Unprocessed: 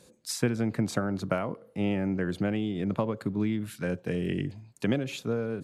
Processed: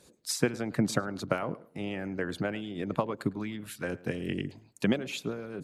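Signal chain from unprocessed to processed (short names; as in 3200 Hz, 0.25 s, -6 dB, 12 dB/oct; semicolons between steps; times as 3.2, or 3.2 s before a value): harmonic-percussive split harmonic -14 dB; tape echo 0.107 s, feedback 26%, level -18.5 dB, low-pass 2100 Hz; gain +3 dB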